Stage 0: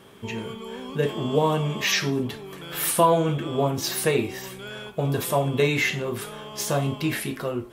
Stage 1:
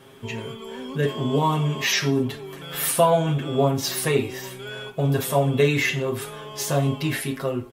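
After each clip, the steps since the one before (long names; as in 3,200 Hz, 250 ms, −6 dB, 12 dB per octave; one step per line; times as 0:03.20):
comb filter 7.4 ms, depth 75%
level −1 dB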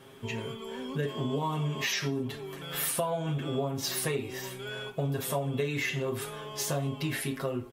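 downward compressor 6 to 1, threshold −24 dBFS, peak gain reduction 11 dB
level −3.5 dB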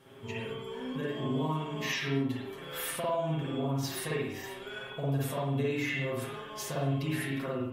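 convolution reverb, pre-delay 51 ms, DRR −5 dB
level −7 dB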